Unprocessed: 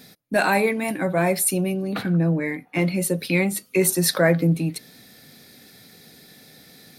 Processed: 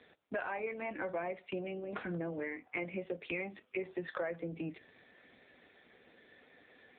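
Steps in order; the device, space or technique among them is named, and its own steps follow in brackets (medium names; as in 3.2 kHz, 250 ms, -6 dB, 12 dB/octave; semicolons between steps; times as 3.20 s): voicemail (band-pass 380–2900 Hz; compression 8:1, threshold -31 dBFS, peak gain reduction 16 dB; trim -2.5 dB; AMR-NB 5.9 kbps 8 kHz)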